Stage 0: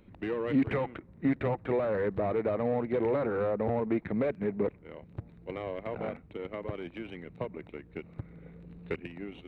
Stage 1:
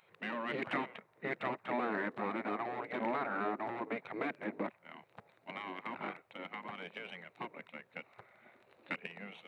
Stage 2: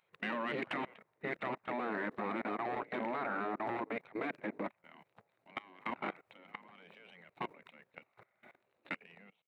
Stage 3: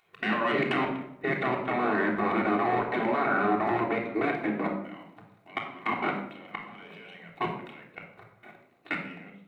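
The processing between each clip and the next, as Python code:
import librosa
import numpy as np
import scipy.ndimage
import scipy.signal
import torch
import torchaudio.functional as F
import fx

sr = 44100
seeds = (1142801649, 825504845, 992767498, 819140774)

y1 = scipy.signal.sosfilt(scipy.signal.cheby1(3, 1.0, 250.0, 'highpass', fs=sr, output='sos'), x)
y1 = fx.spec_gate(y1, sr, threshold_db=-10, keep='weak')
y1 = F.gain(torch.from_numpy(y1), 3.0).numpy()
y2 = fx.fade_out_tail(y1, sr, length_s=0.81)
y2 = fx.level_steps(y2, sr, step_db=21)
y2 = F.gain(torch.from_numpy(y2), 5.0).numpy()
y3 = fx.room_shoebox(y2, sr, seeds[0], volume_m3=1900.0, walls='furnished', distance_m=3.4)
y3 = F.gain(torch.from_numpy(y3), 7.0).numpy()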